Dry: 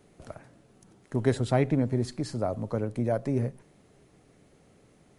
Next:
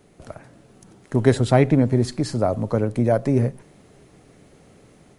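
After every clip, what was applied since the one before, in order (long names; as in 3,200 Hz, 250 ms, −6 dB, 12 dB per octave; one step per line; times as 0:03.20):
automatic gain control gain up to 4 dB
level +4.5 dB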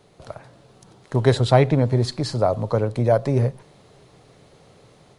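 graphic EQ with 10 bands 125 Hz +6 dB, 250 Hz −4 dB, 500 Hz +5 dB, 1,000 Hz +7 dB, 4,000 Hz +10 dB
level −4 dB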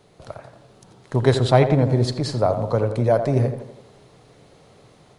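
tape delay 84 ms, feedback 58%, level −7.5 dB, low-pass 1,900 Hz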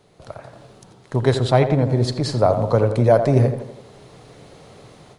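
automatic gain control gain up to 7.5 dB
level −1 dB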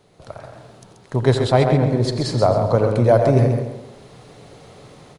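repeating echo 133 ms, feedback 31%, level −6.5 dB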